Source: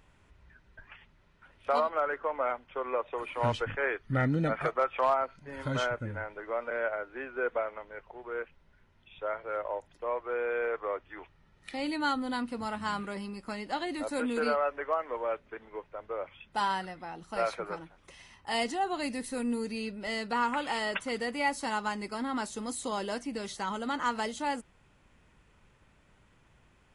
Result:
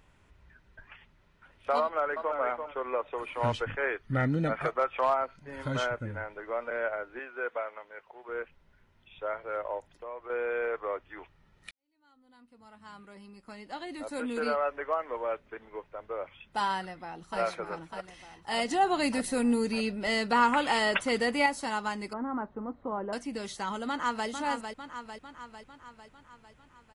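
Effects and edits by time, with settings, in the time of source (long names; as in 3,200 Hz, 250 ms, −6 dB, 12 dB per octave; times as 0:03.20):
0:01.82–0:02.37: delay throw 340 ms, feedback 20%, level −6.5 dB
0:07.19–0:08.29: high-pass filter 620 Hz 6 dB per octave
0:09.90–0:10.30: downward compressor 2 to 1, threshold −43 dBFS
0:11.71–0:14.66: fade in quadratic
0:16.72–0:17.40: delay throw 600 ms, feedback 65%, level −7 dB
0:18.71–0:21.46: clip gain +5.5 dB
0:22.13–0:23.13: low-pass filter 1,400 Hz 24 dB per octave
0:23.88–0:24.28: delay throw 450 ms, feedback 60%, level −6.5 dB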